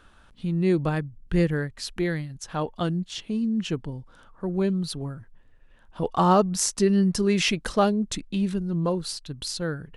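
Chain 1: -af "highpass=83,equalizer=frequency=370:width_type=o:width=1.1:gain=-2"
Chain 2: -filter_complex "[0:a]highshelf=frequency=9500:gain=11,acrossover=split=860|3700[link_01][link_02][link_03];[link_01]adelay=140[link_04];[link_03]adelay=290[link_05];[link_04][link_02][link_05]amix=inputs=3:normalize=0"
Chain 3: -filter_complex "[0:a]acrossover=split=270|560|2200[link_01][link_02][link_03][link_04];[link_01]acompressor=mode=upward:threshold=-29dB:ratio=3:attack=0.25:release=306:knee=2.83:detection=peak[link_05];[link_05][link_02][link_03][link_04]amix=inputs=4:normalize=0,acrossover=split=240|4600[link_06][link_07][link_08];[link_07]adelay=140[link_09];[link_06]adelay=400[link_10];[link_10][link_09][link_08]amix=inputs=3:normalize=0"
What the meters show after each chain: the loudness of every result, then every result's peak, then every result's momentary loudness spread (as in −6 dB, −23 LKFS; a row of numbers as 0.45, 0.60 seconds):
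−26.5, −26.0, −27.0 LKFS; −9.5, −5.0, −8.0 dBFS; 12, 12, 13 LU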